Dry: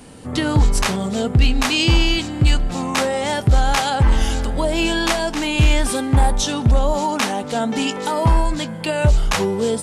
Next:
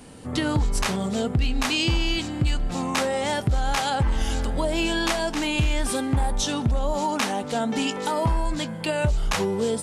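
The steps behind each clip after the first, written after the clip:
downward compressor, threshold −15 dBFS, peak gain reduction 6 dB
level −3.5 dB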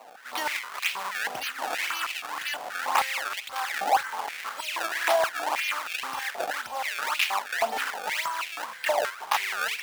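delay with a high-pass on its return 609 ms, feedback 45%, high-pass 3,600 Hz, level −6.5 dB
sample-and-hold swept by an LFO 25×, swing 160% 1.9 Hz
high-pass on a step sequencer 6.3 Hz 730–2,500 Hz
level −3 dB

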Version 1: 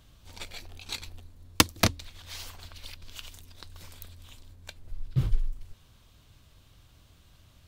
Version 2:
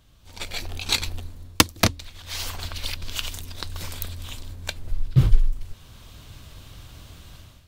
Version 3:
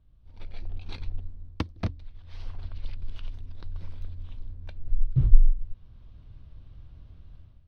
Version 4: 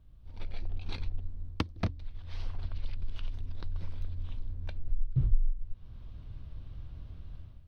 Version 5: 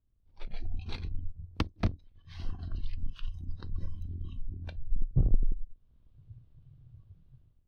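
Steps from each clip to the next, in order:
automatic gain control gain up to 15 dB; level −1 dB
Savitzky-Golay smoothing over 15 samples; spectral tilt −3.5 dB per octave; level −17 dB
downward compressor 2 to 1, threshold −34 dBFS, peak gain reduction 16 dB; level +3.5 dB
sub-octave generator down 2 octaves, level 0 dB; noise reduction from a noise print of the clip's start 19 dB

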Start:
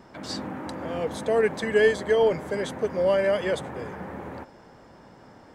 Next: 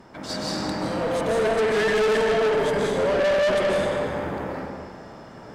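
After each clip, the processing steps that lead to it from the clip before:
comb and all-pass reverb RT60 1.8 s, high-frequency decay 0.9×, pre-delay 105 ms, DRR −5 dB
tube saturation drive 22 dB, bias 0.45
level +3.5 dB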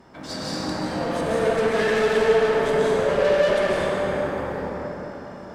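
dense smooth reverb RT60 3.8 s, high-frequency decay 0.5×, pre-delay 0 ms, DRR −1 dB
level −3 dB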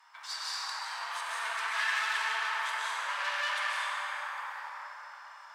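elliptic high-pass filter 960 Hz, stop band 70 dB
level −2.5 dB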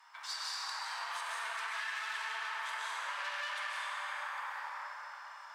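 downward compressor, threshold −36 dBFS, peak gain reduction 9.5 dB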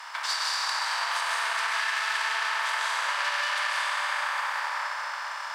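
compressor on every frequency bin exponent 0.6
transient designer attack +3 dB, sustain −4 dB
level +8 dB

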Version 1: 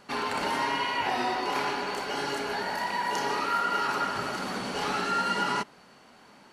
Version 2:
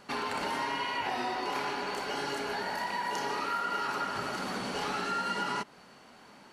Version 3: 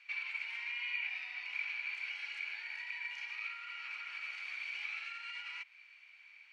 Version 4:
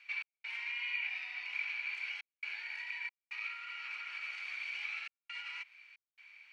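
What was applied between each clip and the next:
downward compressor 2 to 1, threshold −33 dBFS, peak gain reduction 6 dB
brickwall limiter −27.5 dBFS, peak gain reduction 7 dB; four-pole ladder band-pass 2,400 Hz, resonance 90%; level +3.5 dB
gate pattern "x.xxxxxxxx.xx" 68 BPM −60 dB; level +1 dB

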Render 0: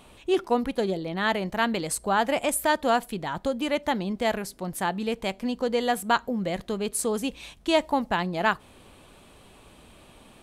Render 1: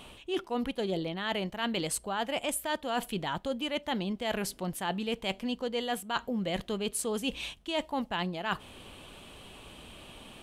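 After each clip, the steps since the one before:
parametric band 3,000 Hz +8 dB 0.45 octaves
reversed playback
downward compressor 10 to 1, threshold −30 dBFS, peak gain reduction 15 dB
reversed playback
level +1.5 dB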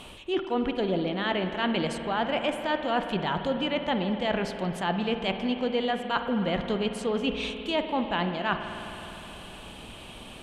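treble cut that deepens with the level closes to 2,700 Hz, closed at −27.5 dBFS
spring reverb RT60 3.5 s, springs 52 ms, chirp 35 ms, DRR 6.5 dB
level +4.5 dB

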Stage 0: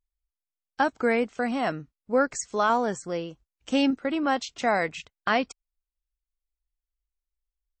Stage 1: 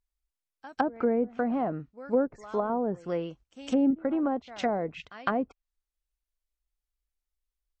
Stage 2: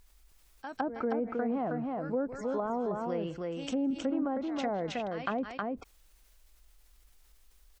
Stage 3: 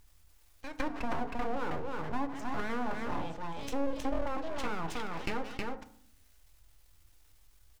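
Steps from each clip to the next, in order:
echo ahead of the sound 158 ms −22 dB; treble cut that deepens with the level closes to 550 Hz, closed at −21.5 dBFS
on a send: single-tap delay 317 ms −5 dB; on the sum: envelope flattener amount 50%; level −8 dB
full-wave rectification; feedback delay network reverb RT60 0.59 s, low-frequency decay 1.5×, high-frequency decay 0.5×, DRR 8 dB

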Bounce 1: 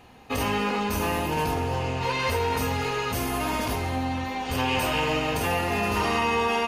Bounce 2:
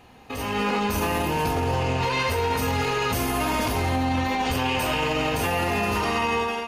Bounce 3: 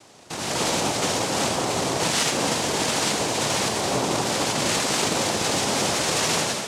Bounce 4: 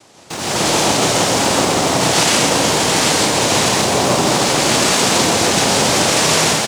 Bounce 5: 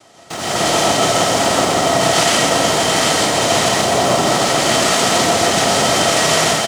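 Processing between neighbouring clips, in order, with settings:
brickwall limiter −24.5 dBFS, peak gain reduction 10 dB; automatic gain control gain up to 8.5 dB
high-shelf EQ 3,600 Hz +9.5 dB; cochlear-implant simulation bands 2
in parallel at −8.5 dB: bit reduction 6 bits; on the sum: loudspeakers that aren't time-aligned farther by 45 metres −3 dB, 56 metres −2 dB; level +3 dB
hollow resonant body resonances 680/1,300/1,900/3,100 Hz, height 10 dB, ringing for 40 ms; level −2 dB

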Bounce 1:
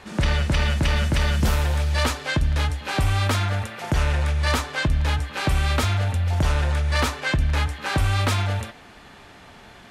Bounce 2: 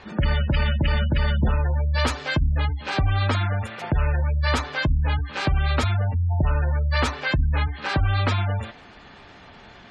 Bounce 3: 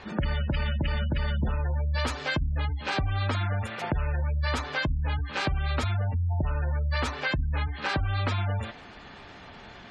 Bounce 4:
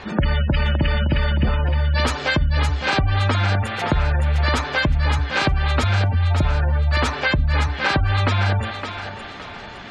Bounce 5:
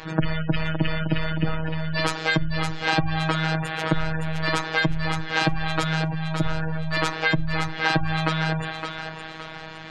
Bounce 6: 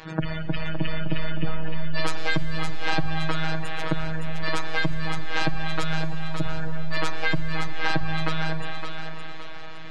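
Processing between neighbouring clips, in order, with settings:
gate on every frequency bin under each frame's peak −25 dB strong
downward compressor 4 to 1, threshold −25 dBFS, peak gain reduction 8 dB
feedback echo with a high-pass in the loop 565 ms, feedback 41%, high-pass 400 Hz, level −6 dB; level +8.5 dB
phases set to zero 159 Hz
comb and all-pass reverb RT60 4.6 s, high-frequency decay 0.95×, pre-delay 80 ms, DRR 11 dB; level −4 dB

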